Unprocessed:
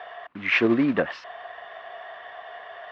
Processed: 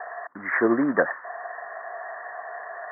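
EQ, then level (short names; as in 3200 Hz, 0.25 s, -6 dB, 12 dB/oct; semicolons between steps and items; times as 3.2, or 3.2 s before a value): HPF 760 Hz 6 dB/oct; steep low-pass 1900 Hz 96 dB/oct; air absorption 200 m; +8.0 dB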